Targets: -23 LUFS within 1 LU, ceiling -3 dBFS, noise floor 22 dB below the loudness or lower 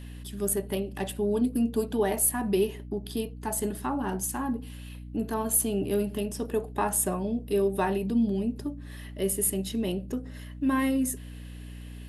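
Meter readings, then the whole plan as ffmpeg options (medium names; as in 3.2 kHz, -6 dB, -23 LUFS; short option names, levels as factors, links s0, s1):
hum 60 Hz; highest harmonic 300 Hz; hum level -39 dBFS; loudness -28.5 LUFS; peak level -11.5 dBFS; loudness target -23.0 LUFS
-> -af "bandreject=f=60:t=h:w=6,bandreject=f=120:t=h:w=6,bandreject=f=180:t=h:w=6,bandreject=f=240:t=h:w=6,bandreject=f=300:t=h:w=6"
-af "volume=1.88"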